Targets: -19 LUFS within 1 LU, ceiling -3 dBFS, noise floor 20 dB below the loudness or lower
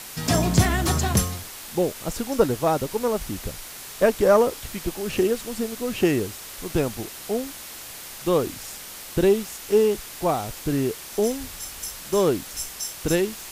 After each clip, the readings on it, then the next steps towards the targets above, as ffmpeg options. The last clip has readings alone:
noise floor -39 dBFS; noise floor target -45 dBFS; loudness -24.5 LUFS; peak level -5.0 dBFS; loudness target -19.0 LUFS
-> -af "afftdn=nr=6:nf=-39"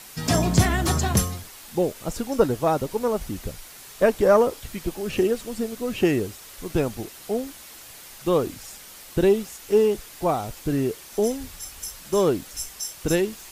noise floor -44 dBFS; noise floor target -45 dBFS
-> -af "afftdn=nr=6:nf=-44"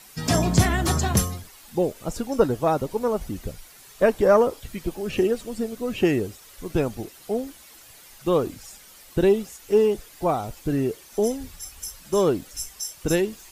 noise floor -49 dBFS; loudness -24.5 LUFS; peak level -5.5 dBFS; loudness target -19.0 LUFS
-> -af "volume=1.88,alimiter=limit=0.708:level=0:latency=1"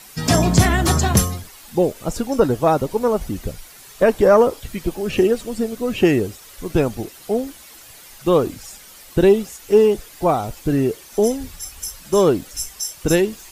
loudness -19.0 LUFS; peak level -3.0 dBFS; noise floor -43 dBFS

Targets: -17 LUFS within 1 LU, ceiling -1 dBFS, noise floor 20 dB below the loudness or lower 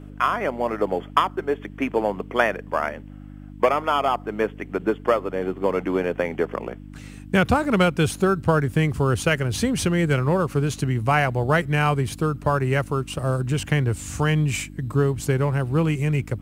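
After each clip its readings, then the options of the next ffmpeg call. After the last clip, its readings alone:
hum 50 Hz; highest harmonic 300 Hz; hum level -38 dBFS; loudness -23.0 LUFS; peak level -2.5 dBFS; loudness target -17.0 LUFS
-> -af "bandreject=f=50:t=h:w=4,bandreject=f=100:t=h:w=4,bandreject=f=150:t=h:w=4,bandreject=f=200:t=h:w=4,bandreject=f=250:t=h:w=4,bandreject=f=300:t=h:w=4"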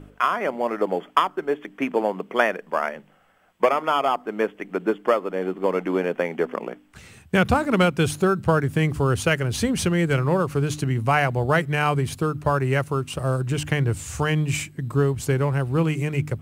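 hum not found; loudness -23.0 LUFS; peak level -3.0 dBFS; loudness target -17.0 LUFS
-> -af "volume=2,alimiter=limit=0.891:level=0:latency=1"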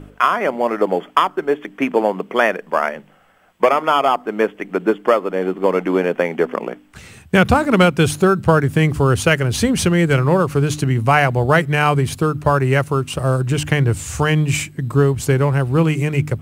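loudness -17.5 LUFS; peak level -1.0 dBFS; noise floor -49 dBFS

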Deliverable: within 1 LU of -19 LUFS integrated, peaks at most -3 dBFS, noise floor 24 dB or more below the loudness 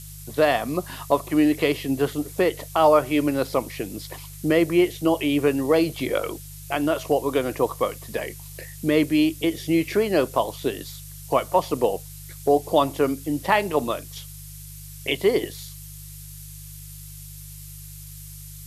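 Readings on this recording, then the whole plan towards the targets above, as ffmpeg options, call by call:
hum 50 Hz; highest harmonic 150 Hz; hum level -40 dBFS; noise floor -40 dBFS; noise floor target -47 dBFS; loudness -23.0 LUFS; peak level -4.5 dBFS; loudness target -19.0 LUFS
-> -af "bandreject=f=50:t=h:w=4,bandreject=f=100:t=h:w=4,bandreject=f=150:t=h:w=4"
-af "afftdn=nr=7:nf=-40"
-af "volume=1.58,alimiter=limit=0.708:level=0:latency=1"

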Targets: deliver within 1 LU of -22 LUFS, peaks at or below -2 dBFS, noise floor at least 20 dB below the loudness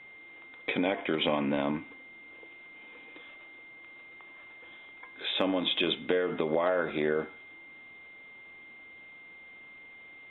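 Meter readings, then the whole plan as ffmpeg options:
steady tone 2.1 kHz; tone level -48 dBFS; loudness -30.0 LUFS; peak level -13.5 dBFS; loudness target -22.0 LUFS
-> -af "bandreject=f=2100:w=30"
-af "volume=2.51"

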